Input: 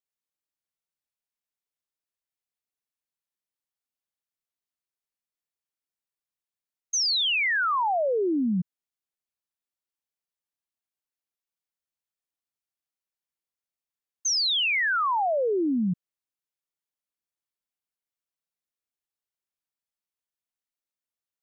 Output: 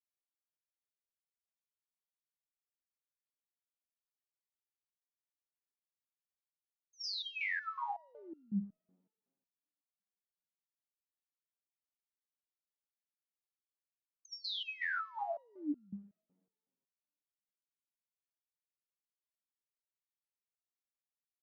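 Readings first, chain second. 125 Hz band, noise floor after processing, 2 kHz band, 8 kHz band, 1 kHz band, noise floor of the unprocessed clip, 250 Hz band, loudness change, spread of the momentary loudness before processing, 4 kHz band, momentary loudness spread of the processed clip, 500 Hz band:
-14.0 dB, under -85 dBFS, -14.0 dB, n/a, -15.5 dB, under -85 dBFS, -15.0 dB, -15.5 dB, 9 LU, -17.5 dB, 14 LU, -22.5 dB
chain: two-slope reverb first 0.64 s, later 2 s, from -16 dB, DRR 18.5 dB; stepped resonator 5.4 Hz 92–1400 Hz; gain -3 dB

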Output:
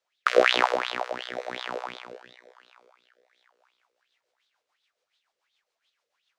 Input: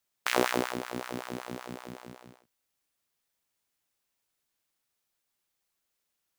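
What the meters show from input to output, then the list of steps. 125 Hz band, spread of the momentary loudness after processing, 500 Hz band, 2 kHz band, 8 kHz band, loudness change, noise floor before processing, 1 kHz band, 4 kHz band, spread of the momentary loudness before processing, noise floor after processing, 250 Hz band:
-9.0 dB, 19 LU, +8.5 dB, +8.5 dB, -4.0 dB, +7.5 dB, -82 dBFS, +7.5 dB, +9.0 dB, 18 LU, -84 dBFS, -3.5 dB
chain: three-band isolator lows -14 dB, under 460 Hz, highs -23 dB, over 6700 Hz; rotary speaker horn 1 Hz, later 7 Hz, at 3.05; thinning echo 0.924 s, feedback 23%, high-pass 450 Hz, level -22 dB; LFO bell 2.8 Hz 450–3800 Hz +18 dB; gain +5 dB

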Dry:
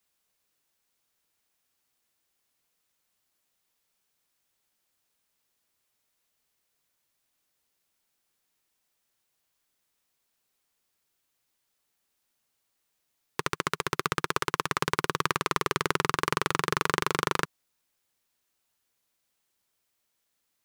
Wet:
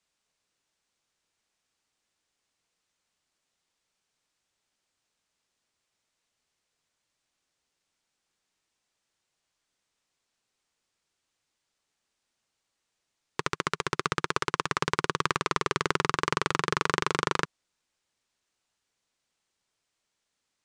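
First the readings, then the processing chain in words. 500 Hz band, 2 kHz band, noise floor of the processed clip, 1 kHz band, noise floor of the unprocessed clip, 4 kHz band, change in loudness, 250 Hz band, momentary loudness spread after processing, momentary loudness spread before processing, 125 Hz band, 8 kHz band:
0.0 dB, 0.0 dB, -82 dBFS, 0.0 dB, -78 dBFS, 0.0 dB, 0.0 dB, 0.0 dB, 4 LU, 4 LU, 0.0 dB, -1.5 dB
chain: LPF 8300 Hz 24 dB/oct

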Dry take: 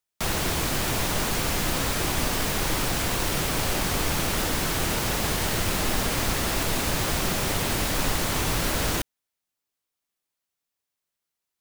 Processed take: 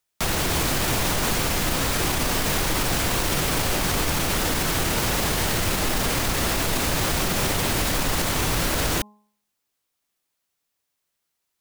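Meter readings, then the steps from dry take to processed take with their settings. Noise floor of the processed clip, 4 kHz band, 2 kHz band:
-79 dBFS, +2.5 dB, +2.5 dB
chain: de-hum 209 Hz, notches 5; limiter -20 dBFS, peak gain reduction 8 dB; gain +6.5 dB

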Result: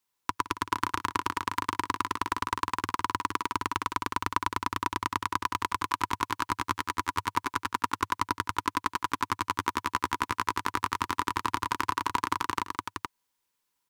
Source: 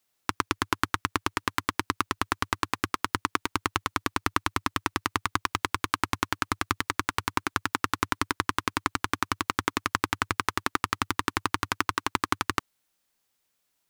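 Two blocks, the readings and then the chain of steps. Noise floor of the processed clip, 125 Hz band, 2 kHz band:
-80 dBFS, -4.5 dB, -4.0 dB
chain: Butterworth band-stop 660 Hz, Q 4.2; bell 980 Hz +11.5 dB 0.22 oct; tapped delay 0.102/0.166/0.465 s -18/-16/-5 dB; gain -5.5 dB

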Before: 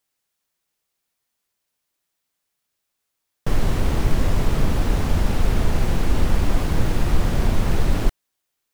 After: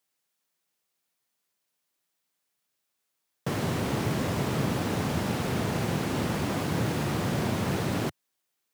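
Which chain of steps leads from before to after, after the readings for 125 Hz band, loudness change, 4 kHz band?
-6.5 dB, -5.5 dB, -2.0 dB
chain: HPF 110 Hz 24 dB/oct; gain -2 dB

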